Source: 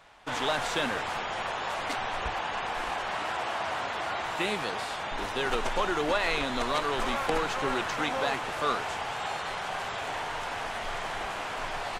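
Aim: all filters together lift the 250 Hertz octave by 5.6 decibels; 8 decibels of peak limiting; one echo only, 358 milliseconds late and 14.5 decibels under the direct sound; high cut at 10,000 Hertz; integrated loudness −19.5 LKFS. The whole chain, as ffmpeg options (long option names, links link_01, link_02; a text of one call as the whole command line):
ffmpeg -i in.wav -af "lowpass=10000,equalizer=frequency=250:width_type=o:gain=7,alimiter=limit=-21dB:level=0:latency=1,aecho=1:1:358:0.188,volume=12dB" out.wav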